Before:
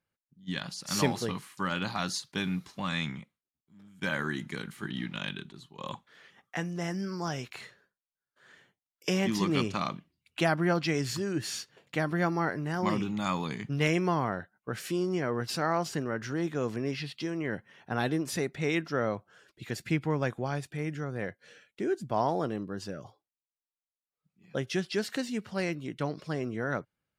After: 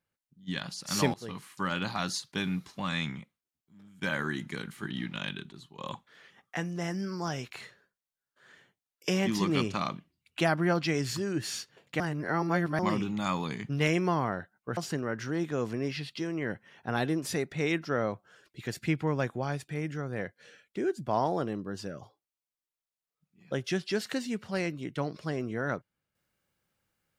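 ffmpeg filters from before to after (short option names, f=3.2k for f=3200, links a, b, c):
-filter_complex "[0:a]asplit=5[a][b][c][d][e];[a]atrim=end=1.14,asetpts=PTS-STARTPTS,afade=t=out:st=1.136:d=0.004:c=hsin:silence=0.105925[f];[b]atrim=start=1.14:end=12.002,asetpts=PTS-STARTPTS,afade=t=in:d=0.38:silence=0.105925[g];[c]atrim=start=11.998:end=12.792,asetpts=PTS-STARTPTS,areverse[h];[d]atrim=start=12.788:end=14.772[i];[e]atrim=start=15.798[j];[f][g]concat=n=2:v=0:a=1[k];[k][h]acrossfade=d=0.004:c1=hsin:c2=hsin[l];[l][i]acrossfade=d=0.004:c1=hsin:c2=hsin[m];[m][j]acrossfade=d=0.004:c1=hsin:c2=hsin"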